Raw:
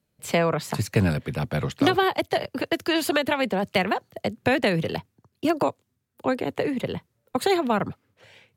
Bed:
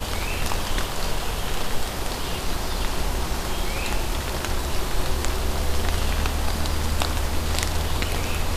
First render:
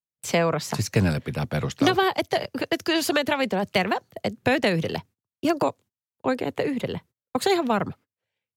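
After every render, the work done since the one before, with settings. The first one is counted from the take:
dynamic equaliser 5,800 Hz, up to +8 dB, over −53 dBFS, Q 2.6
noise gate −46 dBFS, range −32 dB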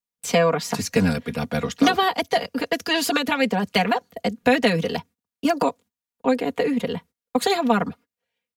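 comb filter 4.2 ms, depth 93%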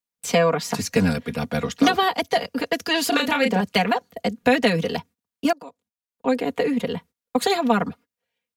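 0:03.09–0:03.61: double-tracking delay 32 ms −4.5 dB
0:05.53–0:06.36: fade in quadratic, from −21 dB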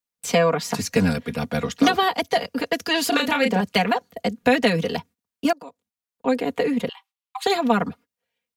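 0:06.89–0:07.46: Chebyshev high-pass with heavy ripple 760 Hz, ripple 9 dB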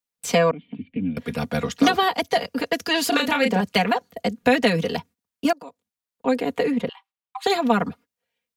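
0:00.51–0:01.17: formant resonators in series i
0:06.70–0:07.43: high-shelf EQ 5,300 Hz → 2,600 Hz −10.5 dB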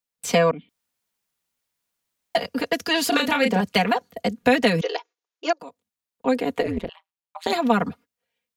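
0:00.69–0:02.35: fill with room tone
0:04.81–0:05.60: linear-phase brick-wall band-pass 310–7,200 Hz
0:06.62–0:07.53: amplitude modulation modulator 170 Hz, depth 90%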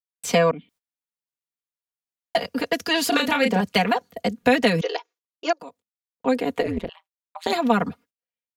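noise gate −52 dBFS, range −19 dB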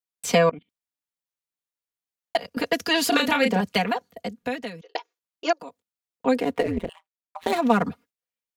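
0:00.49–0:02.57: output level in coarse steps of 19 dB
0:03.32–0:04.95: fade out
0:06.41–0:07.83: running median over 9 samples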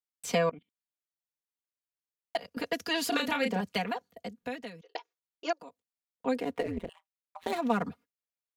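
level −8.5 dB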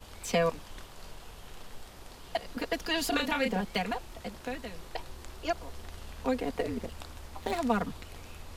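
mix in bed −21 dB

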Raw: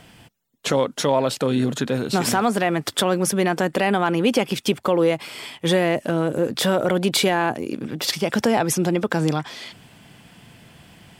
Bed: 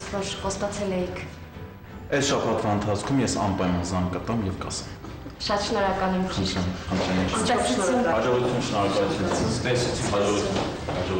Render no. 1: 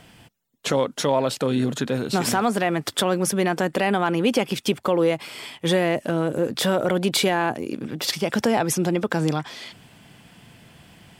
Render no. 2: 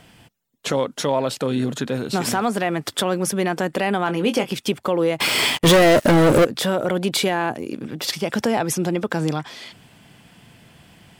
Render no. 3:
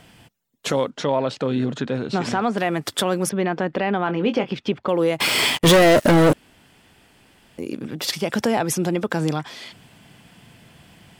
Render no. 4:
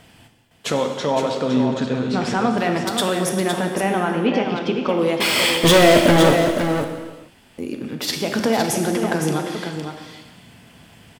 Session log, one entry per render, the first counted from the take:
level −1.5 dB
0:04.05–0:04.53: double-tracking delay 22 ms −8.5 dB; 0:05.20–0:06.45: leveller curve on the samples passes 5
0:00.90–0:02.58: high-frequency loss of the air 120 metres; 0:03.29–0:04.89: high-frequency loss of the air 220 metres; 0:06.33–0:07.58: fill with room tone
on a send: single-tap delay 512 ms −7 dB; on the sum: reverb whose tail is shaped and stops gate 480 ms falling, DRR 4 dB

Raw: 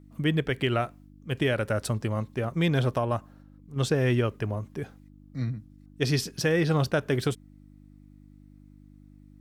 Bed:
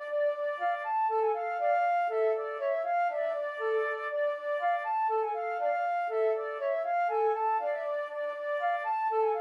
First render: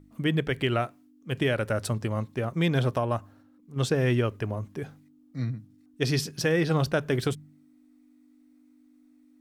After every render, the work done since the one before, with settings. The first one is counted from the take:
hum removal 50 Hz, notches 4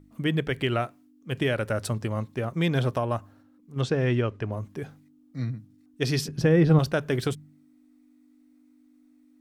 0:03.81–0:04.52: high-frequency loss of the air 86 metres
0:06.28–0:06.79: spectral tilt −3 dB per octave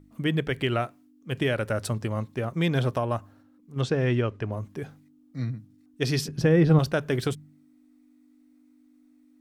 no processing that can be heard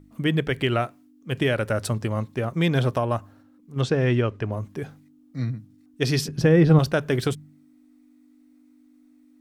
level +3 dB

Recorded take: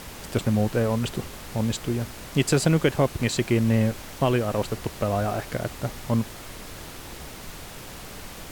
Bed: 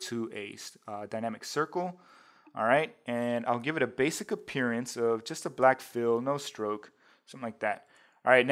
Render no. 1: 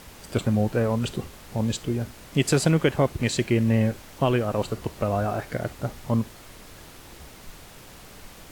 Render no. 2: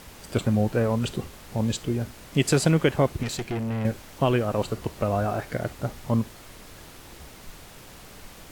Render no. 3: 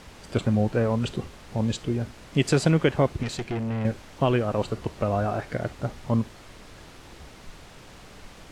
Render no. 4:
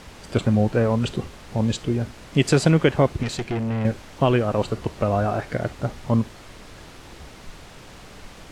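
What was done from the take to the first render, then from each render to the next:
noise reduction from a noise print 6 dB
0:03.23–0:03.85: tube saturation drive 25 dB, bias 0.6
high-frequency loss of the air 53 metres
level +3.5 dB

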